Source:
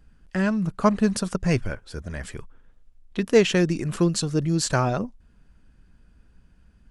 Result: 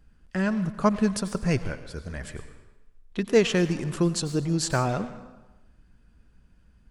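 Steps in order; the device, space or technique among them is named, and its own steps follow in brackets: saturated reverb return (on a send at -8.5 dB: reverb RT60 1.0 s, pre-delay 87 ms + soft clip -25 dBFS, distortion -7 dB); on the sum: gain -2.5 dB

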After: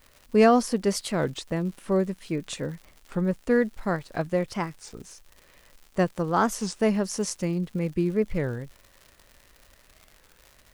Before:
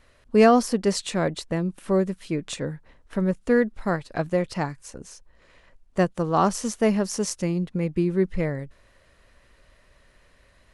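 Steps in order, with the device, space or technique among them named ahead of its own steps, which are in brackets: warped LP (record warp 33 1/3 rpm, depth 250 cents; crackle 140/s -37 dBFS; white noise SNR 42 dB); gain -2 dB

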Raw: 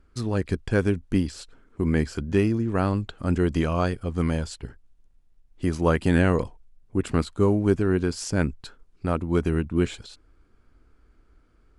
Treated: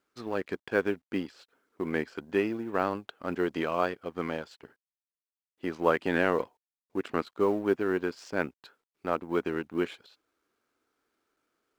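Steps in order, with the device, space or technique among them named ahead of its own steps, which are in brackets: phone line with mismatched companding (BPF 380–3300 Hz; G.711 law mismatch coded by A)

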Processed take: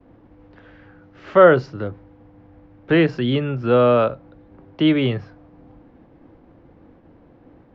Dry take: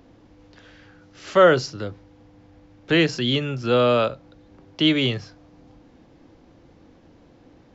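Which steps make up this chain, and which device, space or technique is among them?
hearing-loss simulation (LPF 1800 Hz 12 dB/oct; expander -50 dBFS); gain +3.5 dB

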